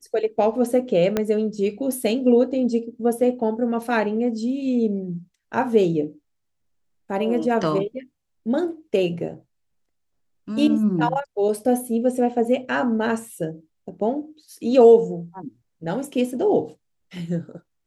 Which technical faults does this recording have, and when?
1.17 s: pop -8 dBFS

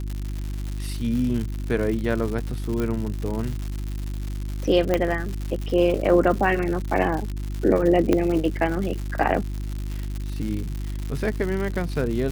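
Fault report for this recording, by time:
crackle 180 per s -28 dBFS
hum 50 Hz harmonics 7 -29 dBFS
2.80 s: pop -15 dBFS
4.94 s: pop -8 dBFS
8.13 s: pop -8 dBFS

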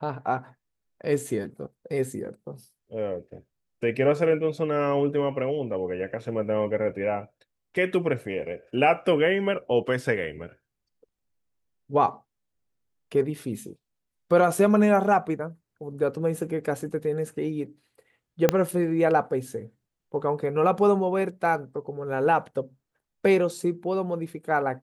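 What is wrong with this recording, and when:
18.49 s: pop -5 dBFS

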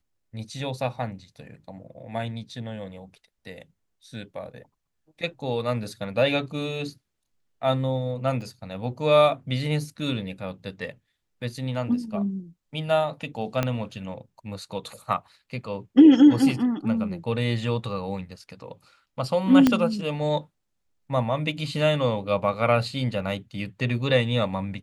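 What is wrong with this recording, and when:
8.41 s: dropout 3.1 ms
13.63 s: pop -10 dBFS
19.67 s: pop -6 dBFS

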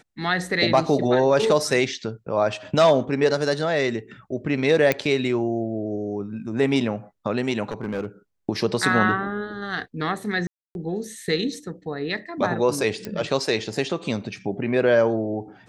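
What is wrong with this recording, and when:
4.92 s: pop -7 dBFS
7.64–8.06 s: clipped -22.5 dBFS
10.47–10.75 s: dropout 281 ms
13.05 s: pop -16 dBFS

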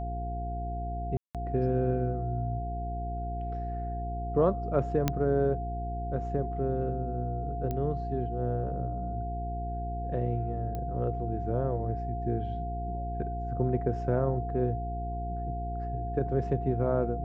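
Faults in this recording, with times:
hum 60 Hz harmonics 7 -35 dBFS
whine 700 Hz -36 dBFS
1.17–1.35 s: dropout 177 ms
5.08 s: pop -11 dBFS
7.71 s: pop -21 dBFS
10.75 s: pop -24 dBFS

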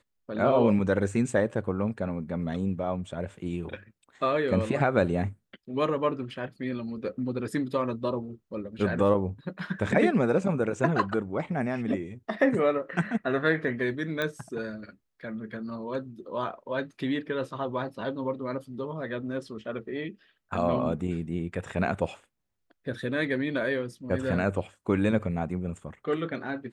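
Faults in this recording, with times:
14.22 s: pop -16 dBFS

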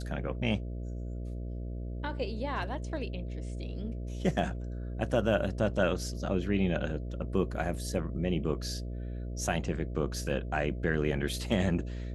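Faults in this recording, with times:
buzz 60 Hz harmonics 11 -37 dBFS

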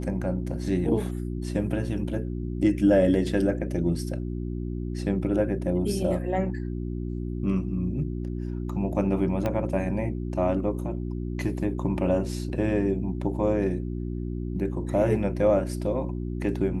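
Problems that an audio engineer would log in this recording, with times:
hum 60 Hz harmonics 6 -31 dBFS
9.46 s: pop -15 dBFS

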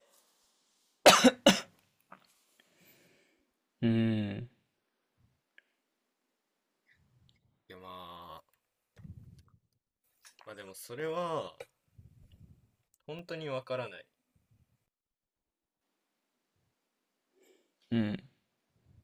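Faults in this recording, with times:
13.19 s: dropout 2.7 ms

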